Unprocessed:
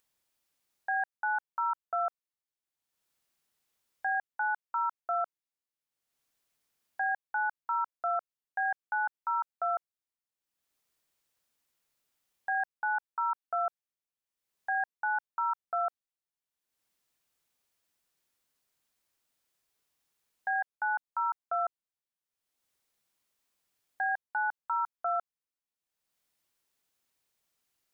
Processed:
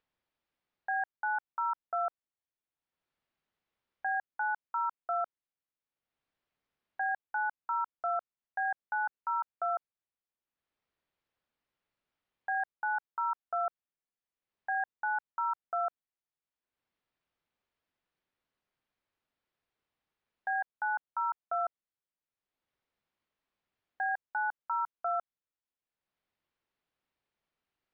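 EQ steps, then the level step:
high-frequency loss of the air 300 metres
0.0 dB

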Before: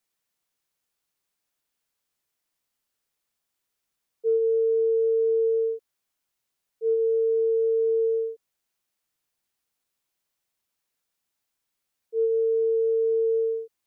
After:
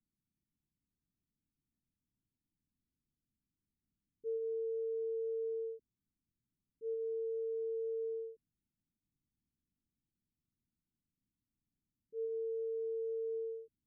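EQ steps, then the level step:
inverse Chebyshev low-pass filter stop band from 540 Hz, stop band 40 dB
+9.0 dB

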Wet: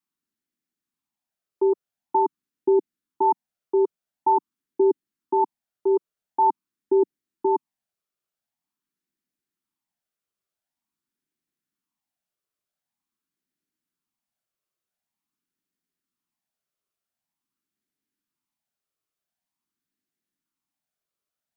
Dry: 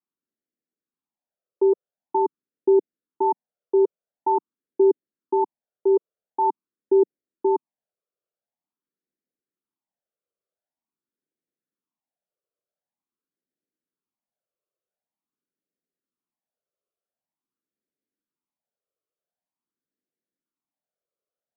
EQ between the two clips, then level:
parametric band 500 Hz −14.5 dB 0.76 octaves
+5.5 dB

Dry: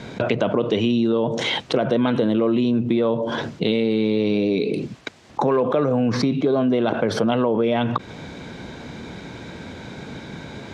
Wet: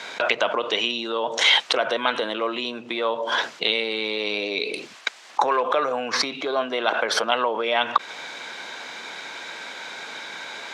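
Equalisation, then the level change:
high-pass filter 990 Hz 12 dB per octave
+7.5 dB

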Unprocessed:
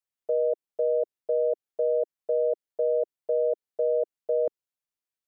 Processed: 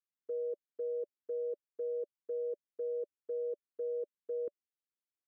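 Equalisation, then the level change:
resonant band-pass 540 Hz, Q 0.5
Butterworth band-reject 720 Hz, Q 0.91
notch filter 580 Hz, Q 12
−3.5 dB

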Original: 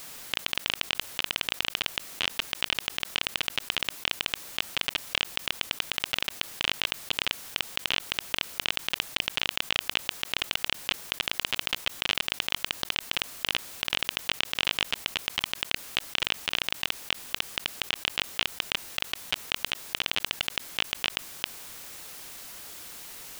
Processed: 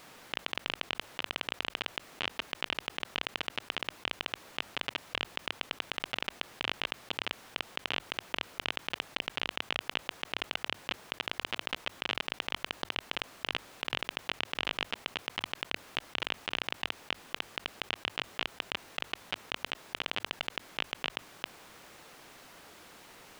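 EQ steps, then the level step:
low-pass filter 1,400 Hz 6 dB per octave
low-shelf EQ 100 Hz −8 dB
mains-hum notches 50/100 Hz
0.0 dB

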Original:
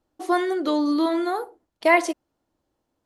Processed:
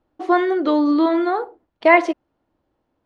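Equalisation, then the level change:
low-pass filter 2,900 Hz 12 dB per octave
+5.0 dB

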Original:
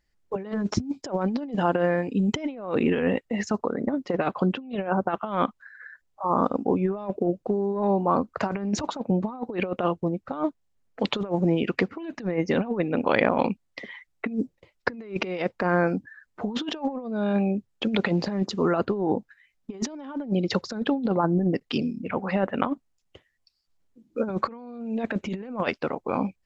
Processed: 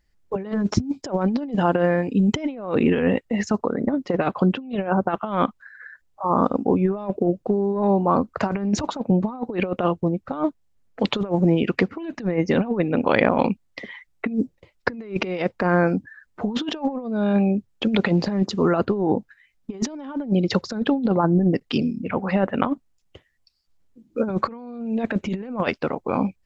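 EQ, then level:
low-shelf EQ 190 Hz +5 dB
+2.5 dB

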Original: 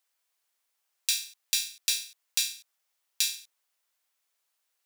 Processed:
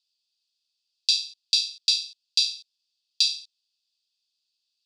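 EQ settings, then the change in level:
Chebyshev high-pass with heavy ripple 2,500 Hz, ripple 6 dB
low-pass with resonance 4,700 Hz, resonance Q 9.4
0.0 dB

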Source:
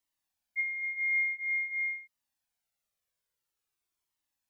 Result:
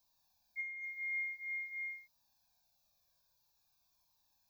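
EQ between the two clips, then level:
Butterworth band-reject 2,000 Hz, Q 2.3
phaser with its sweep stopped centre 2,000 Hz, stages 8
+12.5 dB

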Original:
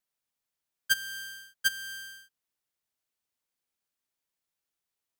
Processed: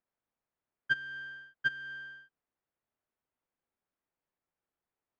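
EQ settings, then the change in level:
dynamic equaliser 750 Hz, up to −7 dB, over −47 dBFS, Q 1.1
bass and treble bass −3 dB, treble −14 dB
head-to-tape spacing loss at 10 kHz 41 dB
+7.0 dB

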